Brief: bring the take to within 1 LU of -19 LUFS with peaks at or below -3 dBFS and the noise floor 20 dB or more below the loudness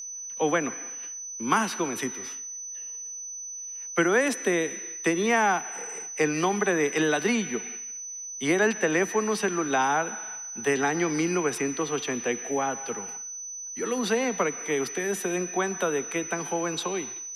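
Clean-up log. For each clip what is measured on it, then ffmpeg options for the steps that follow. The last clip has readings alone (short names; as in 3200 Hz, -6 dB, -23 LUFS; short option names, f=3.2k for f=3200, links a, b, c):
steady tone 6000 Hz; tone level -35 dBFS; loudness -27.0 LUFS; peak -9.0 dBFS; loudness target -19.0 LUFS
-> -af "bandreject=f=6k:w=30"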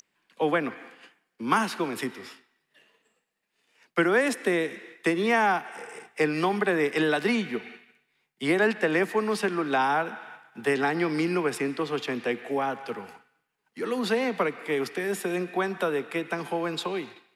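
steady tone none; loudness -27.0 LUFS; peak -9.0 dBFS; loudness target -19.0 LUFS
-> -af "volume=8dB,alimiter=limit=-3dB:level=0:latency=1"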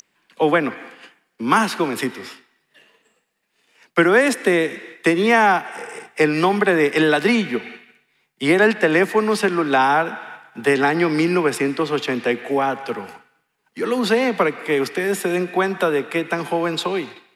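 loudness -19.0 LUFS; peak -3.0 dBFS; noise floor -70 dBFS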